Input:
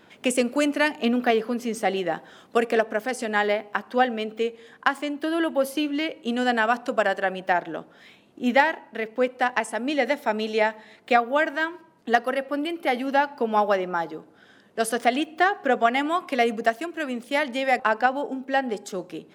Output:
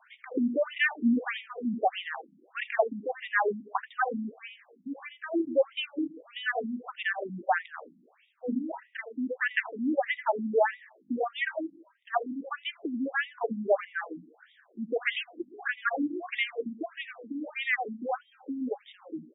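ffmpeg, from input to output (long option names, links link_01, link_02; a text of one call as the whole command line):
ffmpeg -i in.wav -af "aecho=1:1:82|86:0.168|0.119,afftfilt=real='re*between(b*sr/1024,210*pow(2700/210,0.5+0.5*sin(2*PI*1.6*pts/sr))/1.41,210*pow(2700/210,0.5+0.5*sin(2*PI*1.6*pts/sr))*1.41)':imag='im*between(b*sr/1024,210*pow(2700/210,0.5+0.5*sin(2*PI*1.6*pts/sr))/1.41,210*pow(2700/210,0.5+0.5*sin(2*PI*1.6*pts/sr))*1.41)':win_size=1024:overlap=0.75" out.wav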